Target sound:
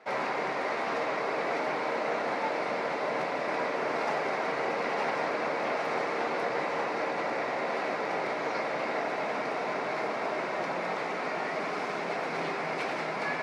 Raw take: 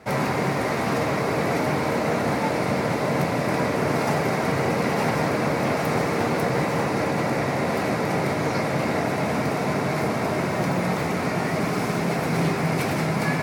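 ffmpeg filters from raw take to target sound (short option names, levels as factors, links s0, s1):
-af "highpass=450,lowpass=4200,volume=0.596"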